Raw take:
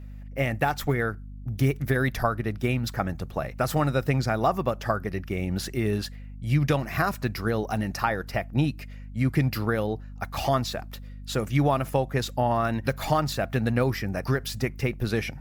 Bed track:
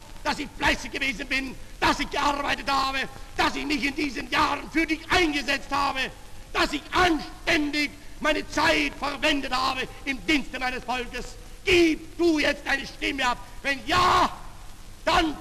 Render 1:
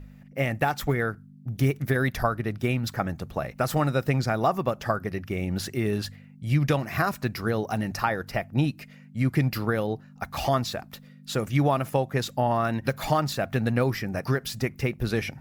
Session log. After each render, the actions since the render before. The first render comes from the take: de-hum 50 Hz, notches 2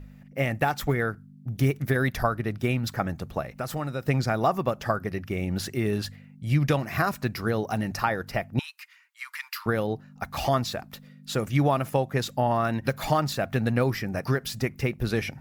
3.41–4.08 compressor 1.5:1, threshold -38 dBFS; 8.59–9.66 steep high-pass 930 Hz 96 dB/oct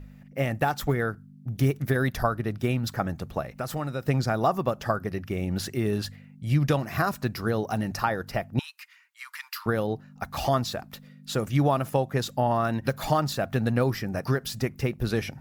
dynamic EQ 2200 Hz, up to -5 dB, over -45 dBFS, Q 2.5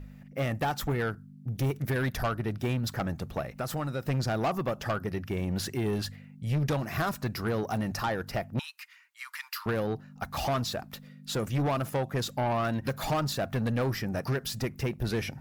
soft clip -23.5 dBFS, distortion -10 dB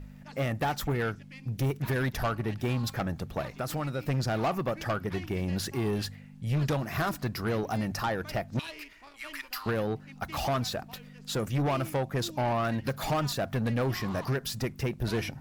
add bed track -24 dB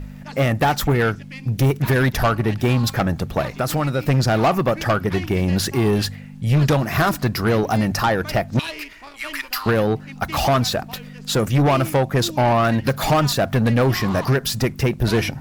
gain +11.5 dB

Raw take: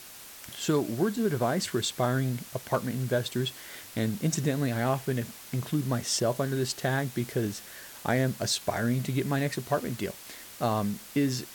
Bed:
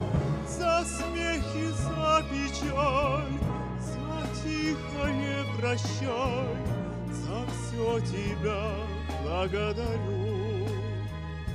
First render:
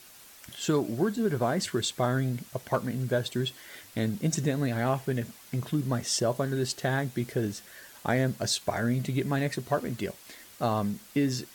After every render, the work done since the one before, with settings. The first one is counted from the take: denoiser 6 dB, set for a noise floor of -47 dBFS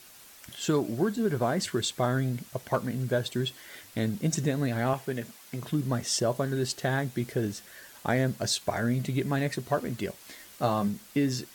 4.93–5.62 HPF 240 Hz 6 dB/oct; 10.19–10.88 doubler 15 ms -6 dB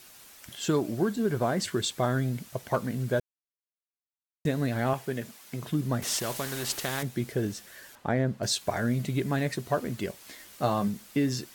3.2–4.45 mute; 6.02–7.03 spectral compressor 2:1; 7.95–8.43 LPF 1500 Hz 6 dB/oct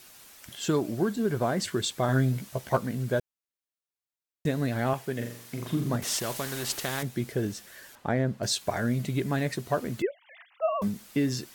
2.07–2.77 doubler 15 ms -3.5 dB; 5.14–5.96 flutter echo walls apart 7.2 m, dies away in 0.58 s; 10.02–10.82 sine-wave speech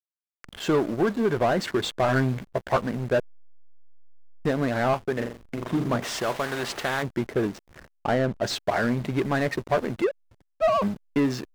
overdrive pedal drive 20 dB, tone 1700 Hz, clips at -10.5 dBFS; backlash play -27.5 dBFS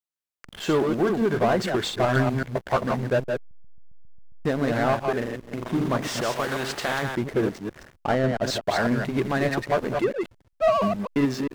reverse delay 0.135 s, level -4.5 dB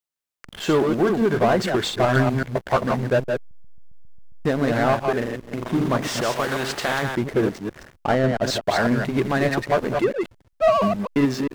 gain +3 dB

